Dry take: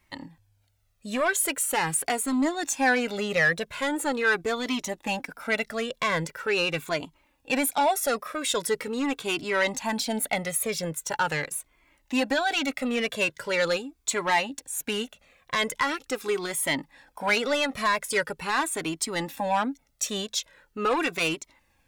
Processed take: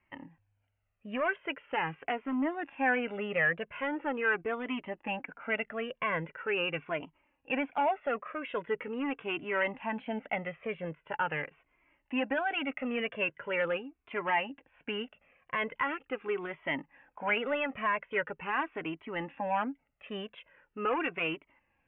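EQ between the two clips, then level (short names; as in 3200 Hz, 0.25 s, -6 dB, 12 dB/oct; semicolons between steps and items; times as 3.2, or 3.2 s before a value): steep low-pass 3000 Hz 96 dB/oct; low shelf 90 Hz -8.5 dB; -5.5 dB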